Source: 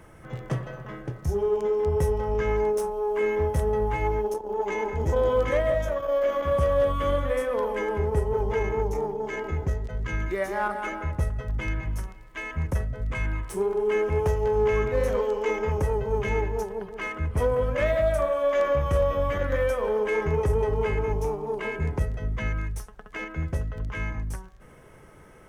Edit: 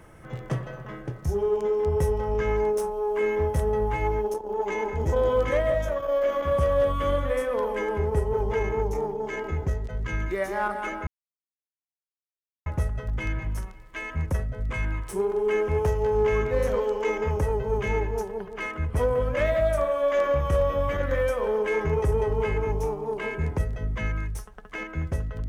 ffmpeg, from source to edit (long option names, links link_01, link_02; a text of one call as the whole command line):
ffmpeg -i in.wav -filter_complex "[0:a]asplit=2[link_01][link_02];[link_01]atrim=end=11.07,asetpts=PTS-STARTPTS,afade=type=out:start_time=11.066:duration=0.004:curve=hsin,apad=pad_dur=1.59[link_03];[link_02]atrim=start=11.07,asetpts=PTS-STARTPTS,afade=type=in:duration=0.004:curve=hsin[link_04];[link_03][link_04]concat=n=2:v=0:a=1" out.wav